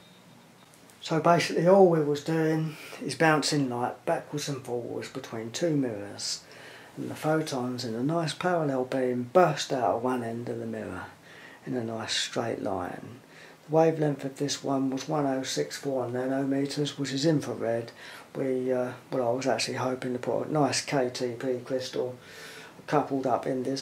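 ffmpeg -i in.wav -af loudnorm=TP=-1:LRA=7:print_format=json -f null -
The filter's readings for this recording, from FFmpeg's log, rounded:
"input_i" : "-28.4",
"input_tp" : "-6.5",
"input_lra" : "6.0",
"input_thresh" : "-39.0",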